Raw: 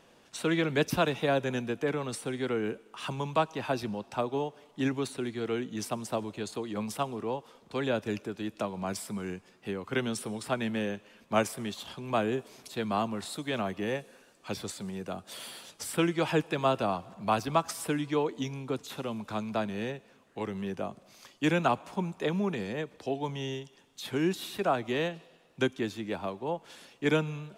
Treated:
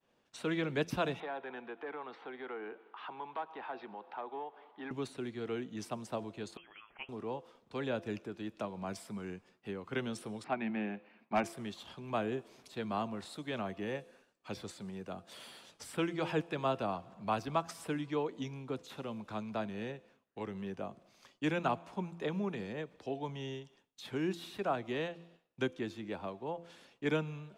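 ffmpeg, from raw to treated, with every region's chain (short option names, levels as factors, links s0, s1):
-filter_complex "[0:a]asettb=1/sr,asplit=3[s0][s1][s2];[s0]atrim=end=1.204[s3];[s1]atrim=start=1.2:end=4.91,asetpts=PTS-STARTPTS,afade=t=in:d=0.004:c=qsin,afade=t=out:st=3.706:d=0.004:c=qsin,asplit=2[s4][s5];[s5]highpass=f=720:p=1,volume=6.31,asoftclip=type=tanh:threshold=0.211[s6];[s4][s6]amix=inputs=2:normalize=0,lowpass=f=1600:p=1,volume=0.501,highpass=340,equalizer=f=560:t=q:w=4:g=-7,equalizer=f=820:t=q:w=4:g=5,equalizer=f=2700:t=q:w=4:g=-5,lowpass=f=3600:w=0.5412,lowpass=f=3600:w=1.3066,acompressor=threshold=0.00501:ratio=1.5:attack=3.2:release=140:knee=1:detection=peak[s7];[s2]atrim=start=4.906[s8];[s3][s7]acrossfade=d=0.004:c1=hsin:c2=qsin[s9];[s9][s8]acrossfade=d=0.004:c1=qsin:c2=hsin,asettb=1/sr,asplit=3[s10][s11][s12];[s10]atrim=end=6.574[s13];[s11]atrim=start=6.57:end=7.09,asetpts=PTS-STARTPTS,afade=t=in:d=0.004:c=qsin,afade=t=out:st=0.516:d=0.004:c=qsin,highpass=1400,lowpass=f=3100:t=q:w=0.5098,lowpass=f=3100:t=q:w=0.6013,lowpass=f=3100:t=q:w=0.9,lowpass=f=3100:t=q:w=2.563,afreqshift=-3600[s14];[s12]atrim=start=7.086[s15];[s13][s14]acrossfade=d=0.004:c1=hsin:c2=qsin[s16];[s16][s15]acrossfade=d=0.004:c1=qsin:c2=hsin,asettb=1/sr,asplit=3[s17][s18][s19];[s17]atrim=end=10.444[s20];[s18]atrim=start=10.44:end=11.44,asetpts=PTS-STARTPTS,afade=t=in:d=0.004:c=qsin,afade=t=out:st=0.996:d=0.004:c=qsin,highpass=190,equalizer=f=210:t=q:w=4:g=5,equalizer=f=340:t=q:w=4:g=4,equalizer=f=490:t=q:w=4:g=-9,equalizer=f=760:t=q:w=4:g=8,equalizer=f=2300:t=q:w=4:g=6,equalizer=f=3300:t=q:w=4:g=-9,lowpass=f=3900:w=0.5412,lowpass=f=3900:w=1.3066,volume=7.5,asoftclip=hard,volume=0.133[s21];[s19]atrim=start=11.436[s22];[s20][s21]acrossfade=d=0.004:c1=hsin:c2=qsin[s23];[s23][s22]acrossfade=d=0.004:c1=qsin:c2=hsin,bandreject=f=170.1:t=h:w=4,bandreject=f=340.2:t=h:w=4,bandreject=f=510.3:t=h:w=4,bandreject=f=680.4:t=h:w=4,agate=range=0.0224:threshold=0.00224:ratio=3:detection=peak,highshelf=f=7200:g=-10.5,volume=0.501"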